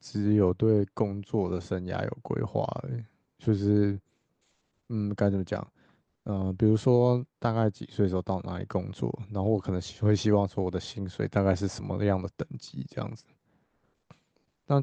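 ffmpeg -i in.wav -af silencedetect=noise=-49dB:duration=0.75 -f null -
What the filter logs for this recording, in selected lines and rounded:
silence_start: 3.99
silence_end: 4.90 | silence_duration: 0.91
silence_start: 13.20
silence_end: 14.11 | silence_duration: 0.90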